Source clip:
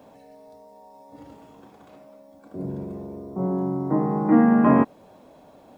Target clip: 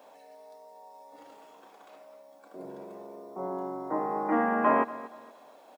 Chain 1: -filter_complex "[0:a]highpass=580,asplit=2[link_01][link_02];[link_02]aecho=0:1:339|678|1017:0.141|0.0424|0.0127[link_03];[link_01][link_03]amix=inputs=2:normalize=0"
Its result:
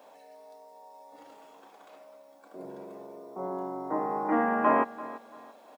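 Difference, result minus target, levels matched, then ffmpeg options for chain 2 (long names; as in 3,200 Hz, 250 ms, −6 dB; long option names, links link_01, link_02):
echo 103 ms late
-filter_complex "[0:a]highpass=580,asplit=2[link_01][link_02];[link_02]aecho=0:1:236|472|708:0.141|0.0424|0.0127[link_03];[link_01][link_03]amix=inputs=2:normalize=0"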